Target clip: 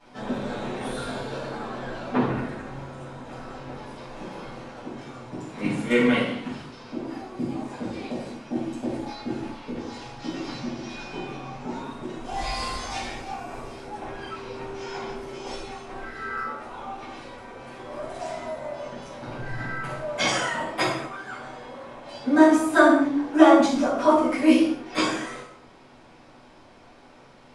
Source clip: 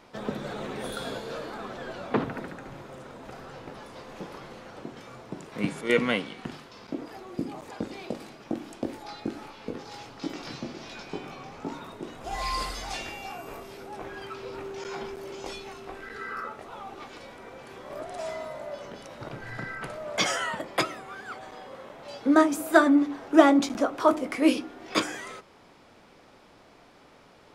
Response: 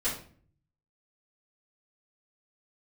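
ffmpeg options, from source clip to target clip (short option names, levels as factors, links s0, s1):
-filter_complex "[1:a]atrim=start_sample=2205,afade=t=out:st=0.19:d=0.01,atrim=end_sample=8820,asetrate=22491,aresample=44100[s0];[0:a][s0]afir=irnorm=-1:irlink=0,volume=0.355"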